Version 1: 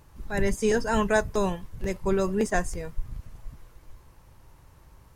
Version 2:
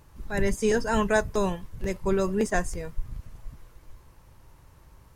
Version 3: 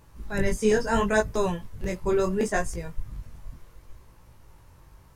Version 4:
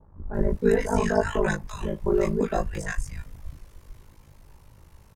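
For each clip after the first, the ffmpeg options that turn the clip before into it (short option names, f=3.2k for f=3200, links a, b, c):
-af "equalizer=f=770:w=7.7:g=-2"
-af "flanger=delay=17.5:depth=5.8:speed=0.71,volume=3.5dB"
-filter_complex "[0:a]aeval=exprs='val(0)*sin(2*PI*26*n/s)':c=same,acrossover=split=1200[a][b];[b]adelay=340[c];[a][c]amix=inputs=2:normalize=0,adynamicequalizer=threshold=0.00398:dfrequency=2300:dqfactor=0.7:tfrequency=2300:tqfactor=0.7:attack=5:release=100:ratio=0.375:range=3.5:mode=cutabove:tftype=highshelf,volume=4dB"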